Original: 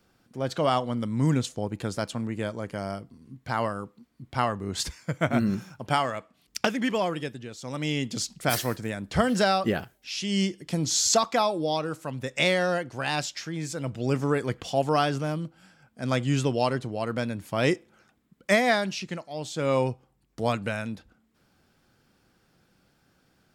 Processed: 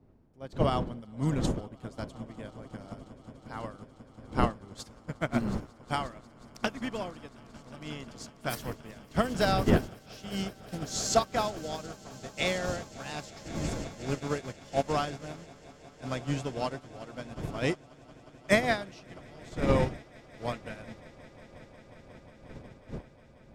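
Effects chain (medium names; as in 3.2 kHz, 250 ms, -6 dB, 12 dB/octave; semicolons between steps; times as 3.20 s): wind noise 270 Hz -33 dBFS; echo with a slow build-up 180 ms, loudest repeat 8, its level -16 dB; upward expansion 2.5:1, over -32 dBFS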